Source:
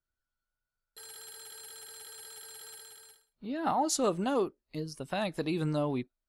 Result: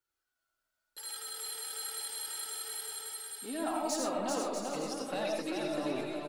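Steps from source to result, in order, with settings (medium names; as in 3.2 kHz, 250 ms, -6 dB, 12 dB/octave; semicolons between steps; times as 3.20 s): compression 6:1, threshold -35 dBFS, peak gain reduction 11.5 dB; high-pass 360 Hz 6 dB/octave; saturation -33 dBFS, distortion -19 dB; algorithmic reverb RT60 0.49 s, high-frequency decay 0.5×, pre-delay 45 ms, DRR 1 dB; flange 0.32 Hz, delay 2.2 ms, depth 2 ms, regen -18%; bouncing-ball echo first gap 390 ms, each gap 0.65×, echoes 5; trim +7 dB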